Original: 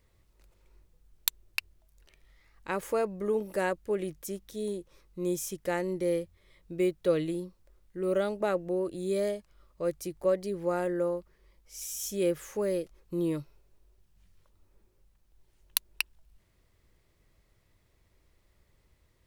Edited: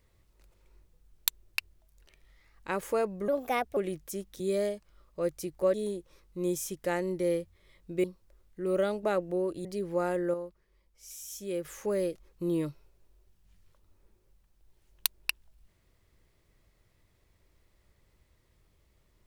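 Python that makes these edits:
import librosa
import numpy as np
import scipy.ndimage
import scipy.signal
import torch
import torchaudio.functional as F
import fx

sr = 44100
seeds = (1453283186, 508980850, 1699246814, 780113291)

y = fx.edit(x, sr, fx.speed_span(start_s=3.28, length_s=0.64, speed=1.31),
    fx.cut(start_s=6.85, length_s=0.56),
    fx.move(start_s=9.02, length_s=1.34, to_s=4.55),
    fx.clip_gain(start_s=11.05, length_s=1.31, db=-6.5), tone=tone)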